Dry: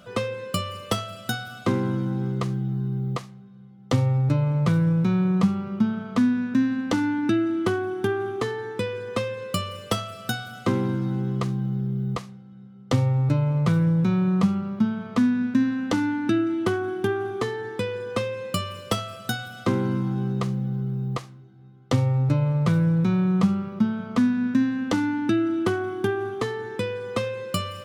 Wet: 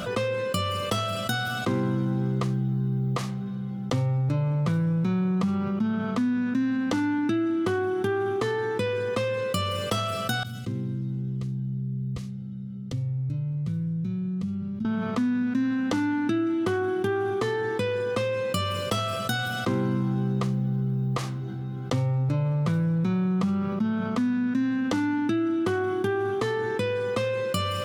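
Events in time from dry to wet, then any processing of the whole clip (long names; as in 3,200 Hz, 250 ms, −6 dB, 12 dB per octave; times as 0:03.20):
0:10.43–0:14.85: guitar amp tone stack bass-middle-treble 10-0-1
whole clip: envelope flattener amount 70%; level −7.5 dB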